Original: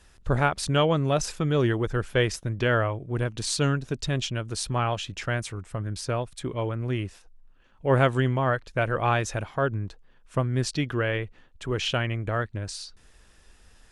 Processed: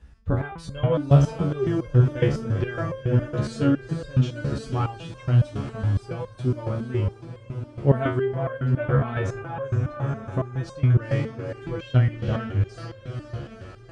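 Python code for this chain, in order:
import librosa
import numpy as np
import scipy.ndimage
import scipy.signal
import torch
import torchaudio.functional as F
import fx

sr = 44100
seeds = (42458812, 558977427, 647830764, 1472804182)

y = scipy.signal.sosfilt(scipy.signal.butter(4, 41.0, 'highpass', fs=sr, output='sos'), x)
y = fx.riaa(y, sr, side='playback')
y = fx.echo_diffused(y, sr, ms=470, feedback_pct=69, wet_db=-8.5)
y = fx.resonator_held(y, sr, hz=7.2, low_hz=70.0, high_hz=530.0)
y = F.gain(torch.from_numpy(y), 6.5).numpy()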